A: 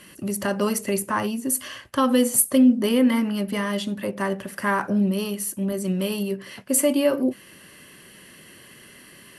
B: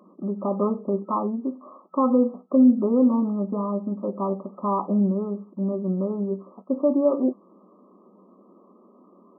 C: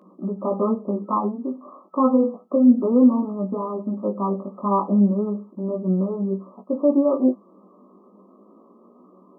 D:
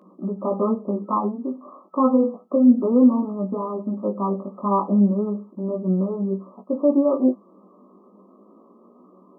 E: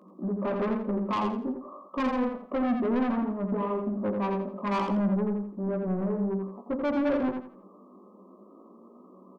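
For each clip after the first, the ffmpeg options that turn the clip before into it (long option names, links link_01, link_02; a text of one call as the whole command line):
ffmpeg -i in.wav -af "afftfilt=real='re*between(b*sr/4096,180,1300)':imag='im*between(b*sr/4096,180,1300)':win_size=4096:overlap=0.75" out.wav
ffmpeg -i in.wav -af "flanger=delay=16:depth=4.4:speed=0.32,volume=5dB" out.wav
ffmpeg -i in.wav -af anull out.wav
ffmpeg -i in.wav -filter_complex "[0:a]asoftclip=type=tanh:threshold=-22.5dB,asplit=2[link_01][link_02];[link_02]aecho=0:1:84|168|252|336:0.531|0.154|0.0446|0.0129[link_03];[link_01][link_03]amix=inputs=2:normalize=0,volume=-2dB" out.wav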